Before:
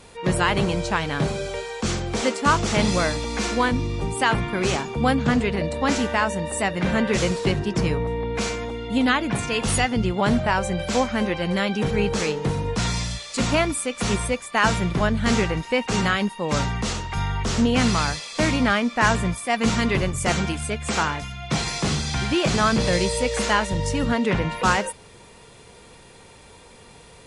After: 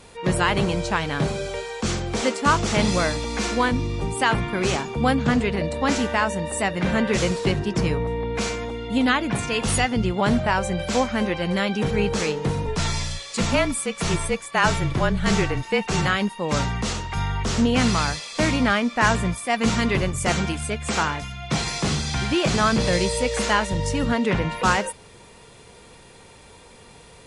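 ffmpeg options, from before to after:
-filter_complex "[0:a]asettb=1/sr,asplit=3[a][b][c];[a]atrim=end=12.664[d];[b]atrim=start=12.66:end=16.07,asetpts=PTS-STARTPTS,afade=t=in:d=0.004:c=qsin,afade=t=out:st=3.406:d=0.004:c=qsin,afreqshift=-32[e];[c]atrim=start=16.066[f];[d][e]acrossfade=d=0.004:c1=hsin:c2=qsin[g];[g][f]acrossfade=d=0.004:c1=qsin:c2=hsin"

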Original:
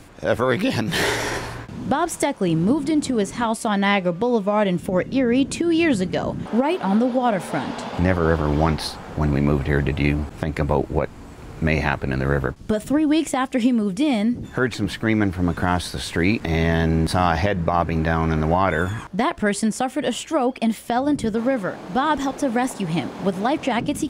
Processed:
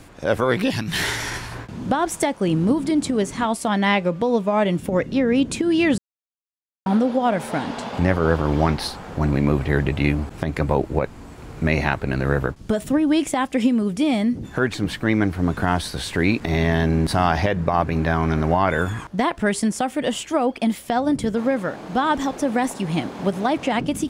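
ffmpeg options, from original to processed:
-filter_complex "[0:a]asettb=1/sr,asplit=3[a][b][c];[a]atrim=end=0.714[d];[b]atrim=start=0.71:end=1.52,asetpts=PTS-STARTPTS,afade=t=in:d=0.004:c=qsin,afade=t=out:st=0.806:d=0.004:c=qsin,equalizer=f=490:w=0.86:g=-11.5[e];[c]atrim=start=1.516[f];[d][e]acrossfade=d=0.004:c1=hsin:c2=qsin[g];[g][f]acrossfade=d=0.004:c1=qsin:c2=hsin,asplit=3[h][i][j];[h]atrim=end=5.98,asetpts=PTS-STARTPTS,afade=t=out:st=5.976:d=0.004:c=hsin[k];[i]atrim=start=5.98:end=6.86,asetpts=PTS-STARTPTS,volume=0[l];[j]atrim=start=6.86,asetpts=PTS-STARTPTS,afade=t=in:d=0.004:c=hsin[m];[k][l][m]concat=n=3:v=0:a=1"

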